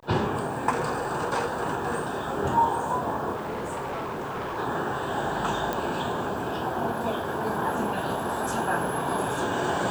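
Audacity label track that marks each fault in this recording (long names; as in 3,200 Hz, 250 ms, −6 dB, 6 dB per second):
3.350000	4.580000	clipping −28.5 dBFS
5.730000	5.730000	click −14 dBFS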